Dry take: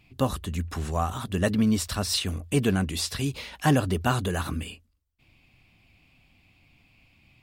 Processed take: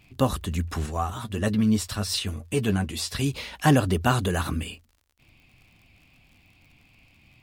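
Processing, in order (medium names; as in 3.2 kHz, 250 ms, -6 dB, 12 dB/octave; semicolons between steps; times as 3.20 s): crackle 65 per s -50 dBFS; 0.86–3.15 s: flange 1.9 Hz, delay 8.6 ms, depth 1.3 ms, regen +26%; trim +2.5 dB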